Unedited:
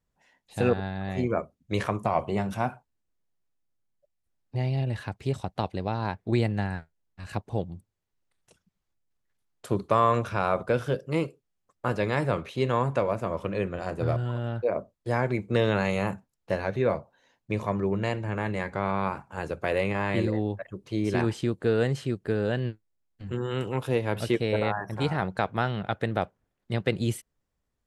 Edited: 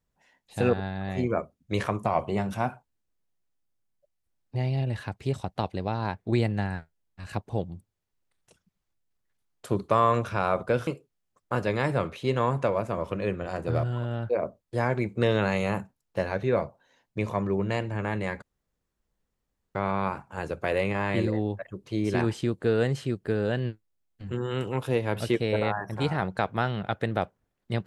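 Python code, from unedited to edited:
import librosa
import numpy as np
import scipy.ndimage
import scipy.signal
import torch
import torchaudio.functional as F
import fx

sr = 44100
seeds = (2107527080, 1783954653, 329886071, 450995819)

y = fx.edit(x, sr, fx.cut(start_s=10.87, length_s=0.33),
    fx.insert_room_tone(at_s=18.75, length_s=1.33), tone=tone)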